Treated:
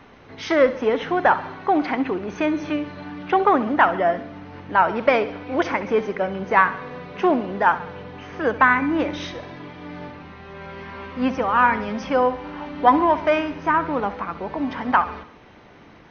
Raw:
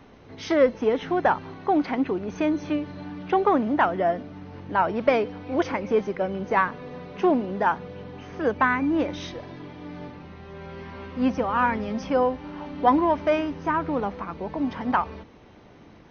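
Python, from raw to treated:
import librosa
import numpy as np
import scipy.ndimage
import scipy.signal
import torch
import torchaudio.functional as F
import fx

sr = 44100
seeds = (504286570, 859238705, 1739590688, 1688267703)

y = fx.peak_eq(x, sr, hz=1700.0, db=7.0, octaves=2.5)
y = fx.echo_feedback(y, sr, ms=68, feedback_pct=52, wet_db=-15)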